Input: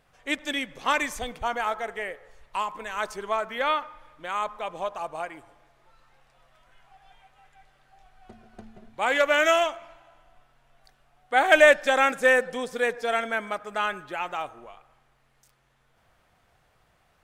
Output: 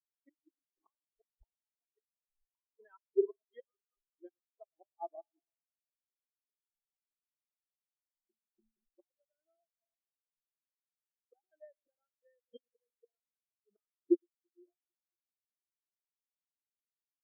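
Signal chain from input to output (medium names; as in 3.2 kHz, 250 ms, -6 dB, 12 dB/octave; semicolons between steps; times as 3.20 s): inverted gate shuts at -22 dBFS, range -25 dB; small resonant body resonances 340/3200 Hz, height 12 dB, ringing for 50 ms; on a send: echo whose repeats swap between lows and highs 112 ms, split 850 Hz, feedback 86%, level -13 dB; on the sum: spectral contrast expander 4:1; trim +1 dB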